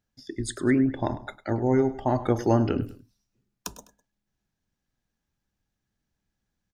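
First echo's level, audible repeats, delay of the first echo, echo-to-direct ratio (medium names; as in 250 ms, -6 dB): -16.5 dB, 2, 102 ms, -16.0 dB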